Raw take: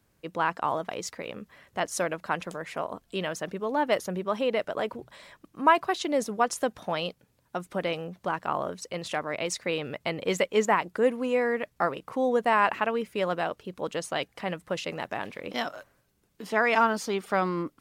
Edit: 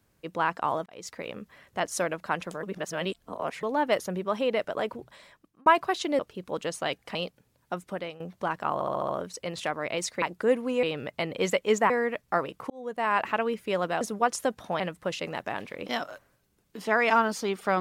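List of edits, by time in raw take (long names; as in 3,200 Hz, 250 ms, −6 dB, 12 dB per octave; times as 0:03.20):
0:00.86–0:01.20: fade in
0:02.63–0:03.63: reverse
0:04.77–0:05.66: fade out equal-power
0:06.19–0:06.98: swap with 0:13.49–0:14.45
0:07.59–0:08.03: fade out, to −14.5 dB
0:08.57: stutter 0.07 s, 6 plays
0:10.77–0:11.38: move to 0:09.70
0:12.18–0:12.78: fade in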